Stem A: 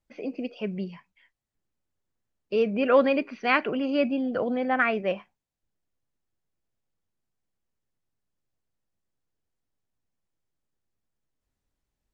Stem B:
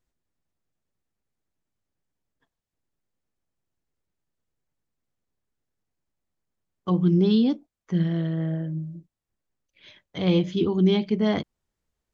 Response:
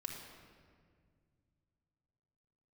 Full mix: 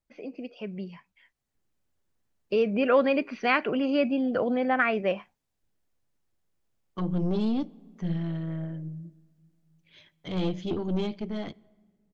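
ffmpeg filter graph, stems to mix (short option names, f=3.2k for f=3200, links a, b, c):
-filter_complex "[0:a]acompressor=threshold=-32dB:ratio=1.5,volume=-4.5dB[a];[1:a]aeval=exprs='(tanh(7.94*val(0)+0.45)-tanh(0.45))/7.94':c=same,adelay=100,volume=-12.5dB,asplit=2[b][c];[c]volume=-18.5dB[d];[2:a]atrim=start_sample=2205[e];[d][e]afir=irnorm=-1:irlink=0[f];[a][b][f]amix=inputs=3:normalize=0,dynaudnorm=f=140:g=17:m=8.5dB"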